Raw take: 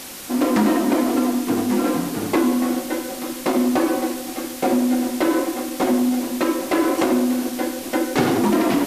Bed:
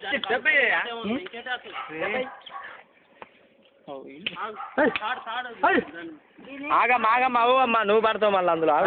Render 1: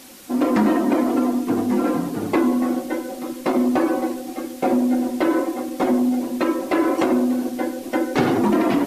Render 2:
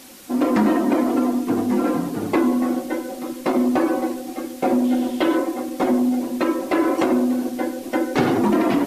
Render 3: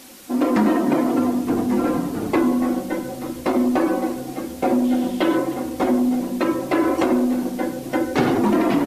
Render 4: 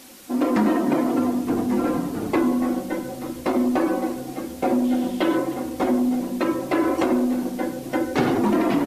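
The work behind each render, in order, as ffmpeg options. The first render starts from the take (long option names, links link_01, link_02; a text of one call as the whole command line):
ffmpeg -i in.wav -af "afftdn=noise_reduction=9:noise_floor=-32" out.wav
ffmpeg -i in.wav -filter_complex "[0:a]asettb=1/sr,asplit=3[link_01][link_02][link_03];[link_01]atrim=end=4.844[link_04];[link_02]atrim=start=4.84:end=5.37,asetpts=PTS-STARTPTS,afade=type=in:duration=0.004:curve=qsin,afade=type=out:start_time=0.526:duration=0.004:curve=qsin,equalizer=frequency=3200:width_type=o:width=0.5:gain=9.5[link_05];[link_03]atrim=start=5.366[link_06];[link_04][link_05]acrossfade=duration=0.004:curve1=hsin:curve2=qsin[link_07];[link_07][link_06]acrossfade=duration=0.004:curve1=qsin:curve2=hsin" out.wav
ffmpeg -i in.wav -filter_complex "[0:a]asplit=6[link_01][link_02][link_03][link_04][link_05][link_06];[link_02]adelay=306,afreqshift=-58,volume=-18.5dB[link_07];[link_03]adelay=612,afreqshift=-116,volume=-23.1dB[link_08];[link_04]adelay=918,afreqshift=-174,volume=-27.7dB[link_09];[link_05]adelay=1224,afreqshift=-232,volume=-32.2dB[link_10];[link_06]adelay=1530,afreqshift=-290,volume=-36.8dB[link_11];[link_01][link_07][link_08][link_09][link_10][link_11]amix=inputs=6:normalize=0" out.wav
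ffmpeg -i in.wav -af "volume=-2dB" out.wav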